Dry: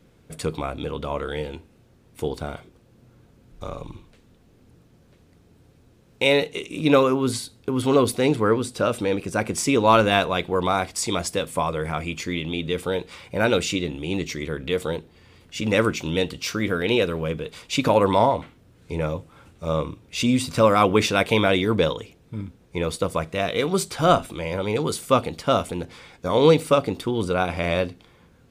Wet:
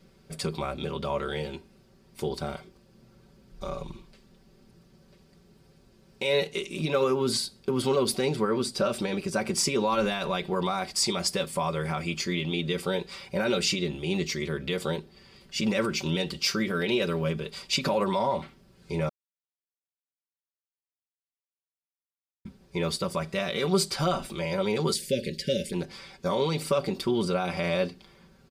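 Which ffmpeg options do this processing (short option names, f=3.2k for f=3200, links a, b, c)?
-filter_complex "[0:a]asplit=3[a][b][c];[a]afade=t=out:st=24.93:d=0.02[d];[b]asuperstop=centerf=960:order=20:qfactor=0.94,afade=t=in:st=24.93:d=0.02,afade=t=out:st=25.72:d=0.02[e];[c]afade=t=in:st=25.72:d=0.02[f];[d][e][f]amix=inputs=3:normalize=0,asplit=3[g][h][i];[g]atrim=end=19.09,asetpts=PTS-STARTPTS,afade=t=out:st=19.086:d=0.004:c=hsin[j];[h]atrim=start=19.09:end=22.45,asetpts=PTS-STARTPTS,volume=0[k];[i]atrim=start=22.45,asetpts=PTS-STARTPTS,afade=t=in:d=0.004:c=hsin[l];[j][k][l]concat=n=3:v=0:a=1,alimiter=limit=-15dB:level=0:latency=1:release=63,equalizer=f=4.8k:w=4.2:g=9.5,aecho=1:1:5.2:0.76,volume=-3.5dB"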